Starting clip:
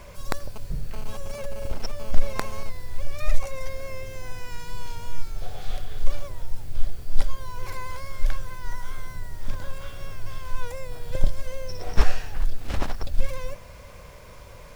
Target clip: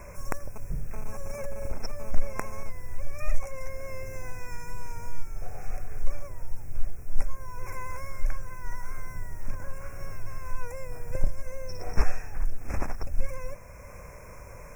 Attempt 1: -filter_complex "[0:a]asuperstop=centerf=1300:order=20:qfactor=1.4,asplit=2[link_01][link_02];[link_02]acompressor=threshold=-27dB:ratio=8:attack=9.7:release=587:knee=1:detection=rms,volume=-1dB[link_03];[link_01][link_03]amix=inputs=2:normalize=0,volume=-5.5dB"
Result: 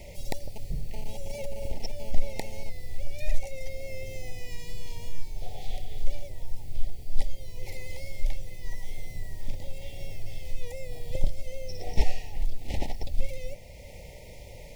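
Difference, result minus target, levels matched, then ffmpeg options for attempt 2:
4,000 Hz band +7.5 dB
-filter_complex "[0:a]asuperstop=centerf=3700:order=20:qfactor=1.4,asplit=2[link_01][link_02];[link_02]acompressor=threshold=-27dB:ratio=8:attack=9.7:release=587:knee=1:detection=rms,volume=-1dB[link_03];[link_01][link_03]amix=inputs=2:normalize=0,volume=-5.5dB"

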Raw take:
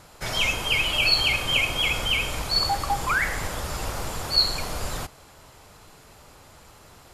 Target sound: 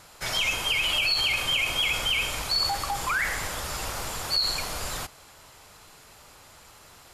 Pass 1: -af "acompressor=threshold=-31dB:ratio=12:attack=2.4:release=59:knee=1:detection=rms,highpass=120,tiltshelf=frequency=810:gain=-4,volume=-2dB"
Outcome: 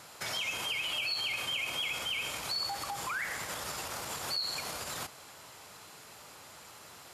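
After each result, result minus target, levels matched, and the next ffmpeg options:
downward compressor: peak gain reduction +9 dB; 125 Hz band −3.0 dB
-af "acompressor=threshold=-21dB:ratio=12:attack=2.4:release=59:knee=1:detection=rms,highpass=120,tiltshelf=frequency=810:gain=-4,volume=-2dB"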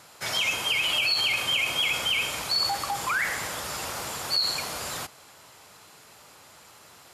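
125 Hz band −4.5 dB
-af "acompressor=threshold=-21dB:ratio=12:attack=2.4:release=59:knee=1:detection=rms,tiltshelf=frequency=810:gain=-4,volume=-2dB"

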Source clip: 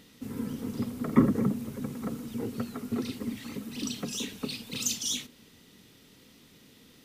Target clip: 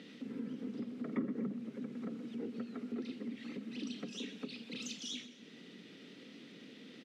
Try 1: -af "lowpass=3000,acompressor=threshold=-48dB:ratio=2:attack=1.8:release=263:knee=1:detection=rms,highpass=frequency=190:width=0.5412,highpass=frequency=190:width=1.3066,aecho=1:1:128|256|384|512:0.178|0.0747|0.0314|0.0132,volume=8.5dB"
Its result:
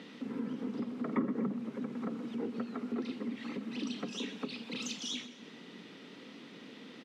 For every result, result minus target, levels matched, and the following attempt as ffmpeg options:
1,000 Hz band +6.0 dB; downward compressor: peak gain reduction −3.5 dB
-af "lowpass=3000,equalizer=frequency=970:width=1.5:gain=-11,acompressor=threshold=-48dB:ratio=2:attack=1.8:release=263:knee=1:detection=rms,highpass=frequency=190:width=0.5412,highpass=frequency=190:width=1.3066,aecho=1:1:128|256|384|512:0.178|0.0747|0.0314|0.0132,volume=8.5dB"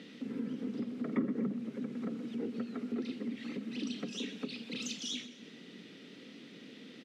downward compressor: peak gain reduction −4 dB
-af "lowpass=3000,equalizer=frequency=970:width=1.5:gain=-11,acompressor=threshold=-56dB:ratio=2:attack=1.8:release=263:knee=1:detection=rms,highpass=frequency=190:width=0.5412,highpass=frequency=190:width=1.3066,aecho=1:1:128|256|384|512:0.178|0.0747|0.0314|0.0132,volume=8.5dB"

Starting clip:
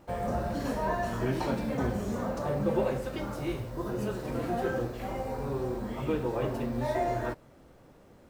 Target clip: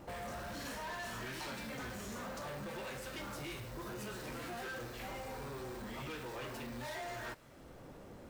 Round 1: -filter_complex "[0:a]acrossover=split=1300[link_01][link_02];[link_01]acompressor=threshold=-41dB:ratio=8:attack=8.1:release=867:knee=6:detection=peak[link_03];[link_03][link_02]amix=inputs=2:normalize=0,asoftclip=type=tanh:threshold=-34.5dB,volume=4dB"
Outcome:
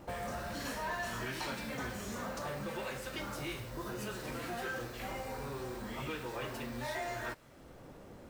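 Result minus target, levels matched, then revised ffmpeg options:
soft clipping: distortion −10 dB
-filter_complex "[0:a]acrossover=split=1300[link_01][link_02];[link_01]acompressor=threshold=-41dB:ratio=8:attack=8.1:release=867:knee=6:detection=peak[link_03];[link_03][link_02]amix=inputs=2:normalize=0,asoftclip=type=tanh:threshold=-44dB,volume=4dB"

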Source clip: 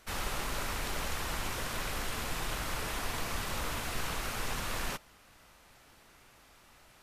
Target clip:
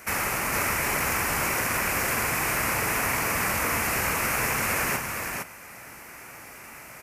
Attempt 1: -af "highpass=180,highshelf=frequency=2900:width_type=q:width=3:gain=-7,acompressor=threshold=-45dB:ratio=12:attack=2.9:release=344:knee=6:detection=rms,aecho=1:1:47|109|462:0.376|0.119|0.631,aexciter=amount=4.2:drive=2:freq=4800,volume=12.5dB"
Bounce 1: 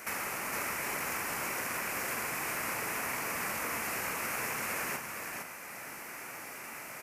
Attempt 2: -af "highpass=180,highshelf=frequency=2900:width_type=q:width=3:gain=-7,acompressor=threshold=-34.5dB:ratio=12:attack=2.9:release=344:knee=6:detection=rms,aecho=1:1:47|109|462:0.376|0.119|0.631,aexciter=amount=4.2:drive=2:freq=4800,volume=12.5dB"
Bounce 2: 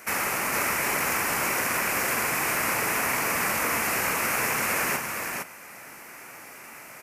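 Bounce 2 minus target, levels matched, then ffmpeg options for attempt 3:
125 Hz band −6.0 dB
-af "highpass=86,highshelf=frequency=2900:width_type=q:width=3:gain=-7,acompressor=threshold=-34.5dB:ratio=12:attack=2.9:release=344:knee=6:detection=rms,aecho=1:1:47|109|462:0.376|0.119|0.631,aexciter=amount=4.2:drive=2:freq=4800,volume=12.5dB"

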